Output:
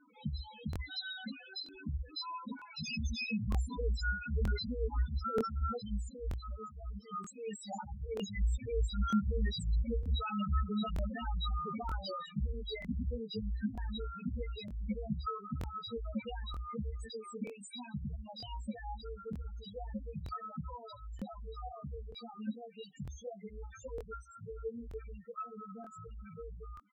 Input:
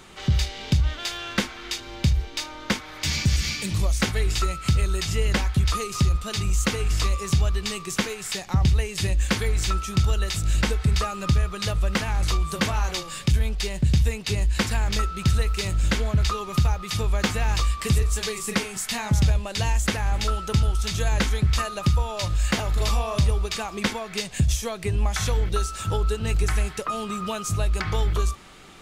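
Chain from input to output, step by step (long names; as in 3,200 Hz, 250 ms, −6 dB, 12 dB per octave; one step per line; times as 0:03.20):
source passing by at 0:07.48, 8 m/s, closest 3.5 metres
high-pass filter 120 Hz 12 dB per octave
comb filter 4.2 ms, depth 48%
compressor whose output falls as the input rises −46 dBFS, ratio −1
multi-voice chorus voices 6, 0.16 Hz, delay 18 ms, depth 4.2 ms
speed change +7%
spectral peaks only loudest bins 4
regular buffer underruns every 0.93 s, samples 1,024, repeat, from 0:00.71
level +14 dB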